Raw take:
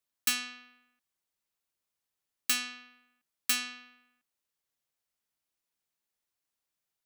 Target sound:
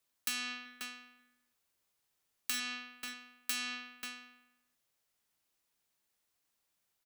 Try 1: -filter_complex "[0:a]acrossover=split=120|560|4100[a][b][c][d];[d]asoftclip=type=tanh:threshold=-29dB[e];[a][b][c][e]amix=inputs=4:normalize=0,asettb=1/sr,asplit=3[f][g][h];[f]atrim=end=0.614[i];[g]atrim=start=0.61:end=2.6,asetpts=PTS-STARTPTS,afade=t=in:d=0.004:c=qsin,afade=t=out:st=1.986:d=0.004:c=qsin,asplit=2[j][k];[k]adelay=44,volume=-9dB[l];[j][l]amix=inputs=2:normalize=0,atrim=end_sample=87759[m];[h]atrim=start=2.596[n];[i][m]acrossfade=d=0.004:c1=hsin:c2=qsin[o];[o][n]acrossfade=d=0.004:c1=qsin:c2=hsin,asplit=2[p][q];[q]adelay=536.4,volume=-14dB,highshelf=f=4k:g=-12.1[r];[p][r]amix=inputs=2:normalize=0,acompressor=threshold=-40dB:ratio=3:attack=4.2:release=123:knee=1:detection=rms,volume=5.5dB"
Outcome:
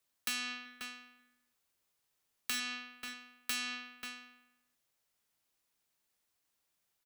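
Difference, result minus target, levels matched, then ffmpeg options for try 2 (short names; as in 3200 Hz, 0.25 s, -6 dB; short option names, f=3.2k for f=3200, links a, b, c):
soft clip: distortion +11 dB
-filter_complex "[0:a]acrossover=split=120|560|4100[a][b][c][d];[d]asoftclip=type=tanh:threshold=-18dB[e];[a][b][c][e]amix=inputs=4:normalize=0,asettb=1/sr,asplit=3[f][g][h];[f]atrim=end=0.614[i];[g]atrim=start=0.61:end=2.6,asetpts=PTS-STARTPTS,afade=t=in:d=0.004:c=qsin,afade=t=out:st=1.986:d=0.004:c=qsin,asplit=2[j][k];[k]adelay=44,volume=-9dB[l];[j][l]amix=inputs=2:normalize=0,atrim=end_sample=87759[m];[h]atrim=start=2.596[n];[i][m]acrossfade=d=0.004:c1=hsin:c2=qsin[o];[o][n]acrossfade=d=0.004:c1=qsin:c2=hsin,asplit=2[p][q];[q]adelay=536.4,volume=-14dB,highshelf=f=4k:g=-12.1[r];[p][r]amix=inputs=2:normalize=0,acompressor=threshold=-40dB:ratio=3:attack=4.2:release=123:knee=1:detection=rms,volume=5.5dB"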